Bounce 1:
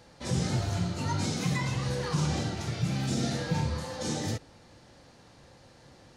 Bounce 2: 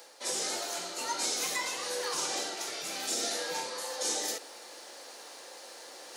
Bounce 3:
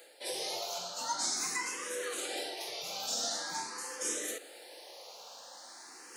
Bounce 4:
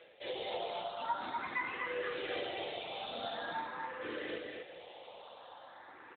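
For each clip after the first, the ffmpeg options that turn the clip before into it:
ffmpeg -i in.wav -af "highpass=frequency=390:width=0.5412,highpass=frequency=390:width=1.3066,aemphasis=mode=production:type=50fm,areverse,acompressor=mode=upward:threshold=-38dB:ratio=2.5,areverse" out.wav
ffmpeg -i in.wav -filter_complex "[0:a]asplit=2[link_01][link_02];[link_02]afreqshift=0.45[link_03];[link_01][link_03]amix=inputs=2:normalize=1" out.wav
ffmpeg -i in.wav -af "aecho=1:1:246:0.631,volume=1dB" -ar 8000 -c:a libopencore_amrnb -b:a 12200 out.amr

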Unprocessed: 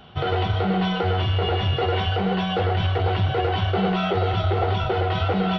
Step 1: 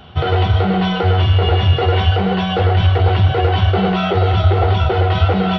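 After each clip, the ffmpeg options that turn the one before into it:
ffmpeg -i in.wav -af "equalizer=frequency=77:width_type=o:width=0.46:gain=10,volume=5.5dB" out.wav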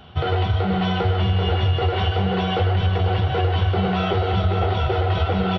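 ffmpeg -i in.wav -af "aecho=1:1:551:0.473,acompressor=threshold=-11dB:ratio=6,volume=-4.5dB" out.wav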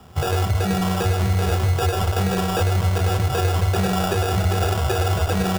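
ffmpeg -i in.wav -filter_complex "[0:a]acrossover=split=150|480|1900[link_01][link_02][link_03][link_04];[link_04]aeval=exprs='max(val(0),0)':channel_layout=same[link_05];[link_01][link_02][link_03][link_05]amix=inputs=4:normalize=0,acrusher=samples=21:mix=1:aa=0.000001" out.wav

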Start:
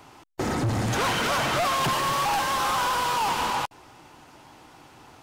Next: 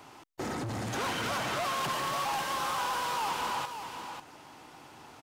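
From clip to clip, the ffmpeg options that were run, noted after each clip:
ffmpeg -i in.wav -af "lowshelf=frequency=84:gain=-10,alimiter=level_in=3dB:limit=-24dB:level=0:latency=1,volume=-3dB,aecho=1:1:543:0.398,volume=-1.5dB" out.wav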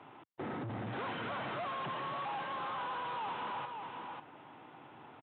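ffmpeg -i in.wav -af "aresample=8000,asoftclip=type=tanh:threshold=-33dB,aresample=44100,highpass=frequency=96:width=0.5412,highpass=frequency=96:width=1.3066,aemphasis=mode=reproduction:type=75kf,volume=-1.5dB" out.wav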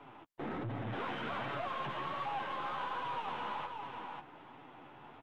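ffmpeg -i in.wav -af "aeval=exprs='if(lt(val(0),0),0.708*val(0),val(0))':channel_layout=same,flanger=delay=7:depth=7.6:regen=-8:speed=1.3:shape=sinusoidal,volume=4.5dB" out.wav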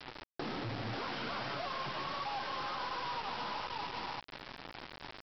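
ffmpeg -i in.wav -af "acompressor=threshold=-47dB:ratio=3,aresample=11025,acrusher=bits=7:mix=0:aa=0.000001,aresample=44100,volume=7dB" out.wav

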